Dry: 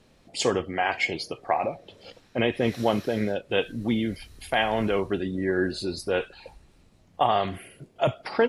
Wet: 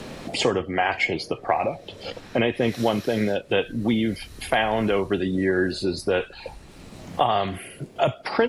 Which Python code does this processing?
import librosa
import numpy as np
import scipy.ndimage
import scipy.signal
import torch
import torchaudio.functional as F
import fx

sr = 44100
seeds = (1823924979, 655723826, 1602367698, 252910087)

y = fx.band_squash(x, sr, depth_pct=70)
y = y * librosa.db_to_amplitude(2.5)